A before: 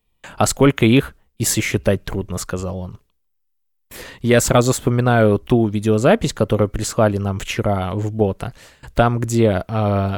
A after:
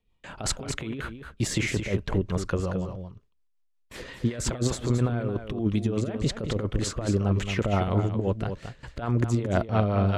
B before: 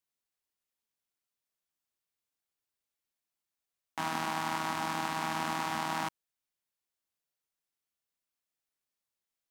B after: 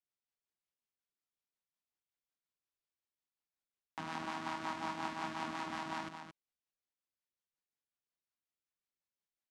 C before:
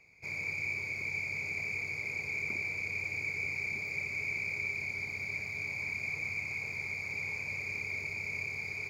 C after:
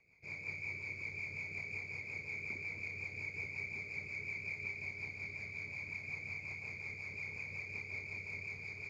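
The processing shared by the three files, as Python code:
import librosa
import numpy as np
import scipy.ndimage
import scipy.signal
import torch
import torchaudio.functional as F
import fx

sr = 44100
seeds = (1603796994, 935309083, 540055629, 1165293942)

p1 = fx.peak_eq(x, sr, hz=1000.0, db=2.0, octaves=0.32)
p2 = fx.over_compress(p1, sr, threshold_db=-18.0, ratio=-0.5)
p3 = fx.rotary(p2, sr, hz=5.5)
p4 = fx.air_absorb(p3, sr, metres=71.0)
p5 = p4 + fx.echo_single(p4, sr, ms=222, db=-8.0, dry=0)
y = p5 * librosa.db_to_amplitude(-4.5)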